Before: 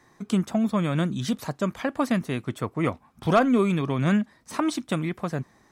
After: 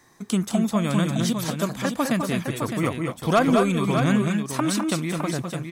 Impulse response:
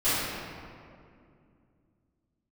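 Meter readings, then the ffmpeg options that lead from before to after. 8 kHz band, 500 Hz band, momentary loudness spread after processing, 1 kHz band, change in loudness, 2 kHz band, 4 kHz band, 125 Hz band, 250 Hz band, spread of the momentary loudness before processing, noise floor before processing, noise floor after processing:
+10.0 dB, +2.0 dB, 7 LU, +2.5 dB, +2.5 dB, +3.0 dB, +6.0 dB, +2.5 dB, +2.0 dB, 10 LU, -60 dBFS, -46 dBFS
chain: -filter_complex "[0:a]highshelf=f=4.9k:g=11,asplit=2[a][b];[b]aecho=0:1:203|209|238|610:0.335|0.473|0.133|0.447[c];[a][c]amix=inputs=2:normalize=0"

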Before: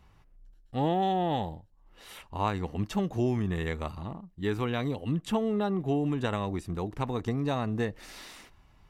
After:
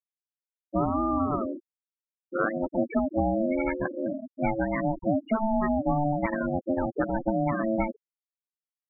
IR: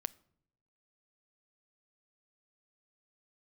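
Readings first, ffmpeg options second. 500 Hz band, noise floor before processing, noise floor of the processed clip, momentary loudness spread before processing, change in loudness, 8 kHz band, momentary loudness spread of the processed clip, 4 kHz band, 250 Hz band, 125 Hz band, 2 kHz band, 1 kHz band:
+3.5 dB, -60 dBFS, under -85 dBFS, 14 LU, +3.0 dB, under -30 dB, 7 LU, under -20 dB, +4.0 dB, -3.0 dB, +5.0 dB, +3.0 dB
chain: -filter_complex "[0:a]equalizer=f=650:t=o:w=1.9:g=-2.5,aeval=exprs='val(0)*sin(2*PI*440*n/s)':c=same,asplit=2[a][b];[b]equalizer=f=250:t=o:w=1:g=5,equalizer=f=2k:t=o:w=1:g=10,equalizer=f=4k:t=o:w=1:g=-7,equalizer=f=8k:t=o:w=1:g=9[c];[1:a]atrim=start_sample=2205[d];[c][d]afir=irnorm=-1:irlink=0,volume=16.5dB[e];[a][e]amix=inputs=2:normalize=0,acompressor=threshold=-14dB:ratio=8,afftfilt=real='re*gte(hypot(re,im),0.251)':imag='im*gte(hypot(re,im),0.251)':win_size=1024:overlap=0.75,volume=-6.5dB"

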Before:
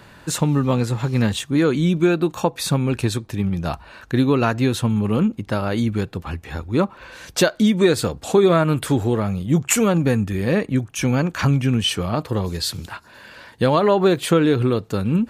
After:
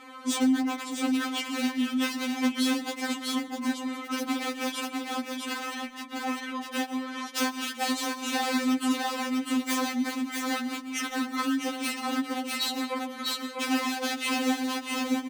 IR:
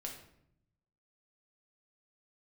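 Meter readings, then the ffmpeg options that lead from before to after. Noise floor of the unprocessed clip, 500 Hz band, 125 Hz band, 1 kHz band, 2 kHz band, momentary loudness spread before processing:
-47 dBFS, -17.5 dB, under -40 dB, -5.0 dB, -3.5 dB, 9 LU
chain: -filter_complex "[0:a]lowshelf=f=260:g=-11.5,aeval=exprs='(mod(6.31*val(0)+1,2)-1)/6.31':c=same,acontrast=39,lowpass=f=4k:p=1,aecho=1:1:650:0.531,afreqshift=-410,asplit=2[a][b];[1:a]atrim=start_sample=2205,adelay=124[c];[b][c]afir=irnorm=-1:irlink=0,volume=-12.5dB[d];[a][d]amix=inputs=2:normalize=0,acompressor=threshold=-24dB:ratio=6,highpass=f=140:w=0.5412,highpass=f=140:w=1.3066,afftfilt=real='re*3.46*eq(mod(b,12),0)':imag='im*3.46*eq(mod(b,12),0)':win_size=2048:overlap=0.75,volume=1dB"

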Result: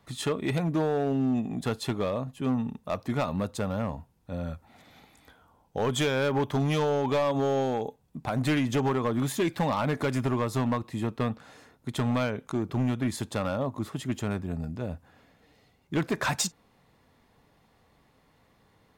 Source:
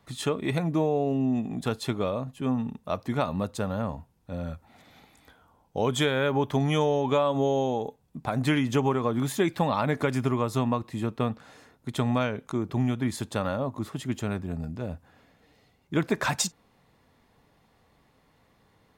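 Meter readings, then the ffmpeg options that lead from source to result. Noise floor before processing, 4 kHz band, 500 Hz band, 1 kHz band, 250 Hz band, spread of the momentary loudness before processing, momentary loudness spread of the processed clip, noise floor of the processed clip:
-65 dBFS, -1.5 dB, -1.5 dB, -1.5 dB, -1.0 dB, 11 LU, 10 LU, -65 dBFS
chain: -af "volume=21dB,asoftclip=hard,volume=-21dB"

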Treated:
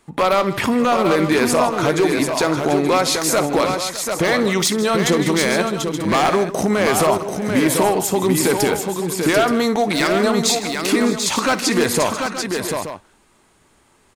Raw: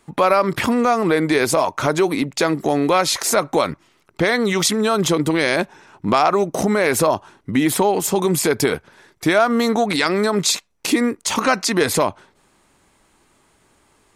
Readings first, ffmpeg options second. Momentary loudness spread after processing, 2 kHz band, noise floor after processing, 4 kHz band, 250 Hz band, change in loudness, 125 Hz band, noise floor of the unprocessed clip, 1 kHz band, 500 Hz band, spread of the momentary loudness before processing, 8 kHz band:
6 LU, +0.5 dB, -57 dBFS, +1.5 dB, +1.5 dB, +0.5 dB, +1.5 dB, -60 dBFS, +0.5 dB, +1.0 dB, 5 LU, +1.5 dB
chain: -af "aeval=exprs='0.335*(abs(mod(val(0)/0.335+3,4)-2)-1)':c=same,aecho=1:1:58|158|607|740|876:0.168|0.168|0.141|0.531|0.266"

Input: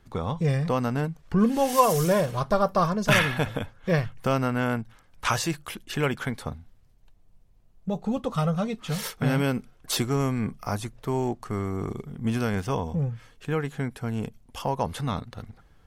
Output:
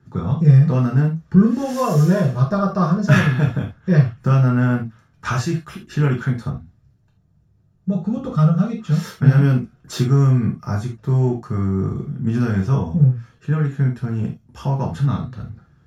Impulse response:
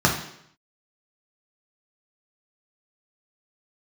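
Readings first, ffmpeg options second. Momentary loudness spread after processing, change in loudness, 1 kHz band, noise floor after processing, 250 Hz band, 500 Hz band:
11 LU, +8.0 dB, -0.5 dB, -58 dBFS, +8.5 dB, +1.0 dB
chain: -filter_complex "[0:a]equalizer=f=910:t=o:w=0.78:g=-5[a];[1:a]atrim=start_sample=2205,atrim=end_sample=3969,asetrate=43659,aresample=44100[b];[a][b]afir=irnorm=-1:irlink=0,volume=-16dB"

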